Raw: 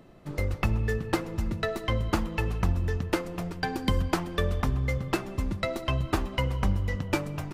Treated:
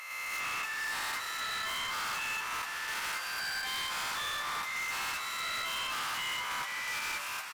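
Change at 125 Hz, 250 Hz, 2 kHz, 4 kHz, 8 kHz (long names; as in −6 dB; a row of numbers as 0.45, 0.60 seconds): −31.5, −26.0, +3.5, +4.5, +6.5 decibels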